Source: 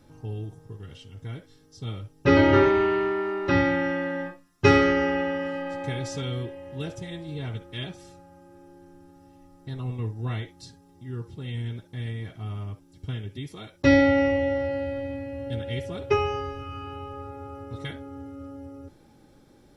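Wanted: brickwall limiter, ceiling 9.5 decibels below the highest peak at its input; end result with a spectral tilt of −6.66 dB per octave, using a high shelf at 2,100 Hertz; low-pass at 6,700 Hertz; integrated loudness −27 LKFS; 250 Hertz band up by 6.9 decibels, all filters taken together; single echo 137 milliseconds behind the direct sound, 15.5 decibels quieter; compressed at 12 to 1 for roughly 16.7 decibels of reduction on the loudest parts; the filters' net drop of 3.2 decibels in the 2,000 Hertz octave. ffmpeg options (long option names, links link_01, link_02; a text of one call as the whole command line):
ffmpeg -i in.wav -af "lowpass=6700,equalizer=frequency=250:width_type=o:gain=8,equalizer=frequency=2000:width_type=o:gain=-6.5,highshelf=frequency=2100:gain=5.5,acompressor=threshold=-26dB:ratio=12,alimiter=level_in=0.5dB:limit=-24dB:level=0:latency=1,volume=-0.5dB,aecho=1:1:137:0.168,volume=7dB" out.wav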